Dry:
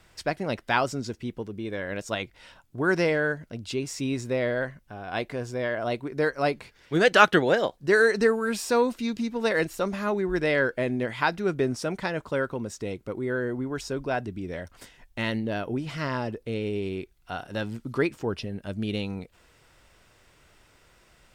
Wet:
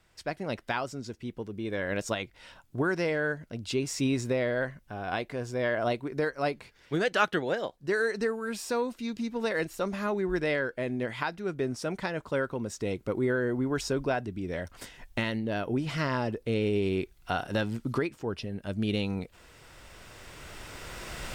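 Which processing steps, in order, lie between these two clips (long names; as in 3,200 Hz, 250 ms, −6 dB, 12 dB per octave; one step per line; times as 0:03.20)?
camcorder AGC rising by 8.8 dB per second
level −8.5 dB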